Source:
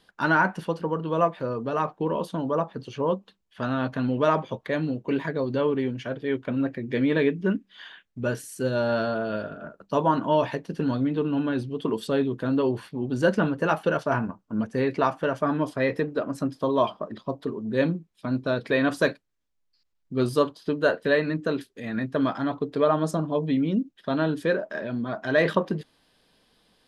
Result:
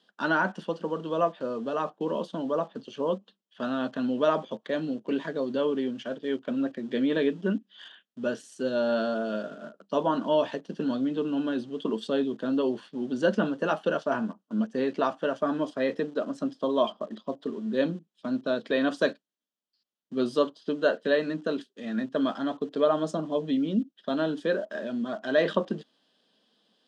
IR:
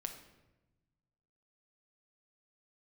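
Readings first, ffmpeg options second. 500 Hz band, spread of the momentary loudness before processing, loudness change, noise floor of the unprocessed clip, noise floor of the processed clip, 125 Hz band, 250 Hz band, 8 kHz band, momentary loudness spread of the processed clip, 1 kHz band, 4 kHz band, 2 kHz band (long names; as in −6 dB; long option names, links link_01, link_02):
−2.0 dB, 8 LU, −2.5 dB, −72 dBFS, −81 dBFS, −10.5 dB, −2.5 dB, can't be measured, 8 LU, −4.5 dB, 0.0 dB, −4.5 dB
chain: -filter_complex "[0:a]asplit=2[link_01][link_02];[link_02]aeval=exprs='val(0)*gte(abs(val(0)),0.0141)':channel_layout=same,volume=-9dB[link_03];[link_01][link_03]amix=inputs=2:normalize=0,highpass=frequency=190:width=0.5412,highpass=frequency=190:width=1.3066,equalizer=frequency=220:width_type=q:width=4:gain=5,equalizer=frequency=610:width_type=q:width=4:gain=3,equalizer=frequency=930:width_type=q:width=4:gain=-3,equalizer=frequency=2200:width_type=q:width=4:gain=-8,equalizer=frequency=3200:width_type=q:width=4:gain=7,lowpass=frequency=7800:width=0.5412,lowpass=frequency=7800:width=1.3066,volume=-6dB"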